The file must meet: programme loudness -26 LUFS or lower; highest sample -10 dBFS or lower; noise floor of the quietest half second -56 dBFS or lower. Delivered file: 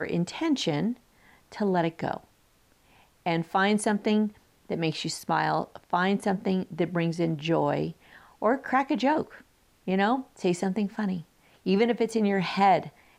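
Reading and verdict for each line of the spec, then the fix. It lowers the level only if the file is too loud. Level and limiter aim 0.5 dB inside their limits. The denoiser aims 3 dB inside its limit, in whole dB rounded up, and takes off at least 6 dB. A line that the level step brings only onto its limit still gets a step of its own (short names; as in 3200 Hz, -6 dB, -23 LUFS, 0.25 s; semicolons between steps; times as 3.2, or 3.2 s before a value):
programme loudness -27.0 LUFS: OK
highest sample -11.5 dBFS: OK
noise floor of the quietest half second -63 dBFS: OK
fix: none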